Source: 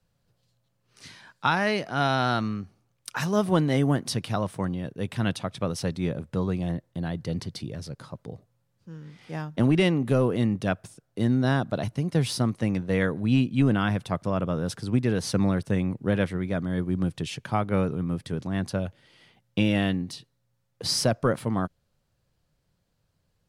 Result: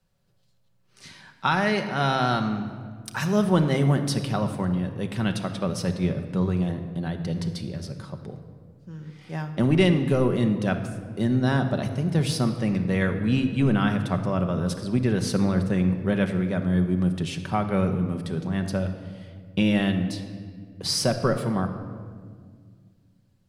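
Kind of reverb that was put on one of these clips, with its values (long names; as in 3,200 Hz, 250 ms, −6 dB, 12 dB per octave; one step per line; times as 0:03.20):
rectangular room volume 2,900 cubic metres, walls mixed, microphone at 1.1 metres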